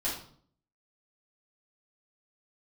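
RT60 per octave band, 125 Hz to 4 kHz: 0.65, 0.70, 0.55, 0.50, 0.40, 0.45 s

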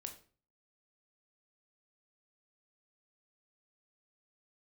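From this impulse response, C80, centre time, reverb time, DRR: 15.0 dB, 13 ms, 0.40 s, 4.5 dB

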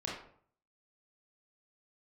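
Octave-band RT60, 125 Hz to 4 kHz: 0.75, 0.60, 0.60, 0.55, 0.45, 0.35 s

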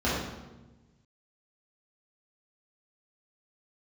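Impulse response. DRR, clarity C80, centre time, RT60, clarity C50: -9.5 dB, 3.0 dB, 74 ms, 1.1 s, -0.5 dB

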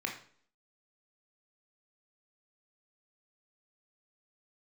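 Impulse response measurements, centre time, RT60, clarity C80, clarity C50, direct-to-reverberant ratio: 21 ms, 0.55 s, 12.5 dB, 7.5 dB, 1.0 dB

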